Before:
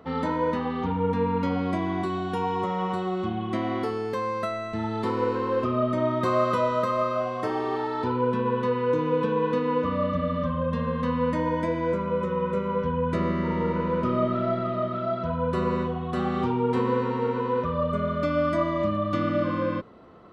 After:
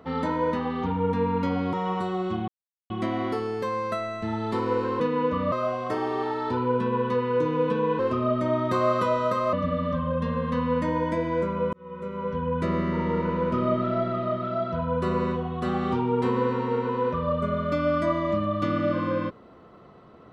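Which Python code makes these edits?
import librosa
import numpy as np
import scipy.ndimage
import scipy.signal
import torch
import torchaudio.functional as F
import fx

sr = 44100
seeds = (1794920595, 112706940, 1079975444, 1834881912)

y = fx.edit(x, sr, fx.cut(start_s=1.73, length_s=0.93),
    fx.insert_silence(at_s=3.41, length_s=0.42),
    fx.swap(start_s=5.51, length_s=1.54, other_s=9.52, other_length_s=0.52),
    fx.fade_in_span(start_s=12.24, length_s=1.15, curve='qsin'), tone=tone)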